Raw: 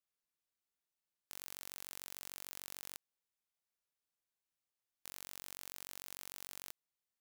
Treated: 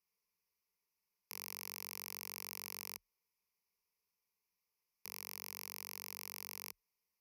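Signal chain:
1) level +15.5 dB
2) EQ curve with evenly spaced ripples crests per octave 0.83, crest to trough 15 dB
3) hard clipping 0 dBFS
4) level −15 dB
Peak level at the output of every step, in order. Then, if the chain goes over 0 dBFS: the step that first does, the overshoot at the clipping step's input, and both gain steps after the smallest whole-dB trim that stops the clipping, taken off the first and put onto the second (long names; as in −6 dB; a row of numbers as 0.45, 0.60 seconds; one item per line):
−4.5, −5.5, −5.5, −20.5 dBFS
no step passes full scale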